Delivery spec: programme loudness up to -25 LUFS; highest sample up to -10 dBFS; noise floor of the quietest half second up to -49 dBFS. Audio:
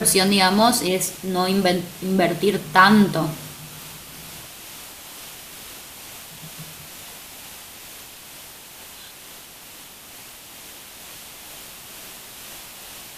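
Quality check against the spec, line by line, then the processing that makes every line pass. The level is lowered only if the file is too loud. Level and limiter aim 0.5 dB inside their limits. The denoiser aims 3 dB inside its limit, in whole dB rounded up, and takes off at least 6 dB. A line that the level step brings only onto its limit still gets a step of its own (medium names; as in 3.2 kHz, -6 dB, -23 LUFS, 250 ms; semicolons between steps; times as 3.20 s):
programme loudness -18.5 LUFS: fail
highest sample -1.5 dBFS: fail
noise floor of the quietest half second -42 dBFS: fail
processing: noise reduction 6 dB, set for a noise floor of -42 dBFS; trim -7 dB; peak limiter -10.5 dBFS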